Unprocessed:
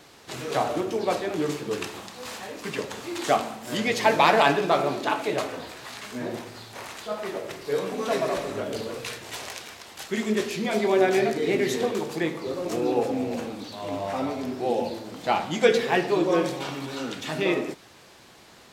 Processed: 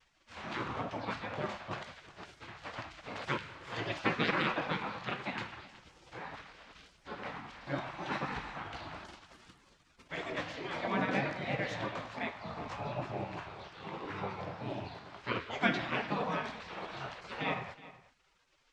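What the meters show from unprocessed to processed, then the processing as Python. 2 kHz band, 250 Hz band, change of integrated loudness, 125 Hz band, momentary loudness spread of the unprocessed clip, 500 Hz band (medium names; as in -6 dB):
-7.0 dB, -12.0 dB, -11.5 dB, -5.0 dB, 15 LU, -16.0 dB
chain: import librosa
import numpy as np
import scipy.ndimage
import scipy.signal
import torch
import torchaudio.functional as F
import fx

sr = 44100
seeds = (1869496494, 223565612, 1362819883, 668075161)

y = fx.spec_gate(x, sr, threshold_db=-15, keep='weak')
y = fx.vibrato(y, sr, rate_hz=1.0, depth_cents=39.0)
y = fx.spacing_loss(y, sr, db_at_10k=34)
y = y + 10.0 ** (-18.0 / 20.0) * np.pad(y, (int(371 * sr / 1000.0), 0))[:len(y)]
y = y * librosa.db_to_amplitude(3.0)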